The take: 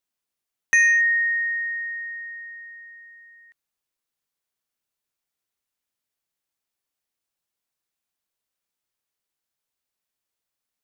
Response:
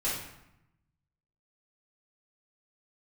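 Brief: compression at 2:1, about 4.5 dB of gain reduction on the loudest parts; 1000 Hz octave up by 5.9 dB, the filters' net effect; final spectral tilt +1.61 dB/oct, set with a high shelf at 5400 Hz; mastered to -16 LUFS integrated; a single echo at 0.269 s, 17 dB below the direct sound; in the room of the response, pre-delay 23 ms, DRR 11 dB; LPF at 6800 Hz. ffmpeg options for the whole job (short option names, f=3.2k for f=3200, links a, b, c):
-filter_complex "[0:a]lowpass=6.8k,equalizer=f=1k:t=o:g=7.5,highshelf=f=5.4k:g=4,acompressor=threshold=-21dB:ratio=2,aecho=1:1:269:0.141,asplit=2[a][b];[1:a]atrim=start_sample=2205,adelay=23[c];[b][c]afir=irnorm=-1:irlink=0,volume=-18dB[d];[a][d]amix=inputs=2:normalize=0,volume=5.5dB"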